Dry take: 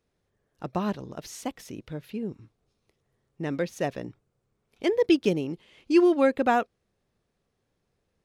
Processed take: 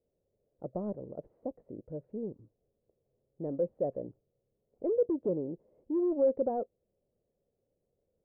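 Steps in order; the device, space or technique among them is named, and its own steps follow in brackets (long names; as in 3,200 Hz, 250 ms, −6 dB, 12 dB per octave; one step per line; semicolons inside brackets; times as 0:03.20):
overdriven synthesiser ladder filter (soft clipping −22 dBFS, distortion −9 dB; transistor ladder low-pass 620 Hz, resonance 60%)
level +3 dB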